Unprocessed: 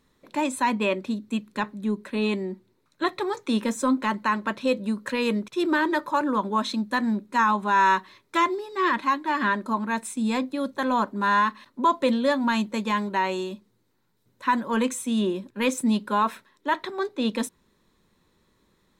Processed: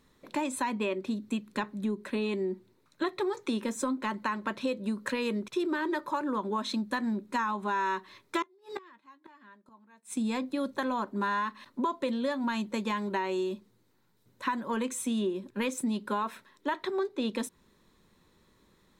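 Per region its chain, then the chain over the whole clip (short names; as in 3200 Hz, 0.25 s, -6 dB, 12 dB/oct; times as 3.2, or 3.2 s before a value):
8.42–10.17 HPF 50 Hz + flipped gate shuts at -25 dBFS, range -33 dB + doubler 15 ms -14 dB
whole clip: dynamic EQ 380 Hz, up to +7 dB, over -43 dBFS, Q 6.3; compressor 6:1, threshold -29 dBFS; gain +1 dB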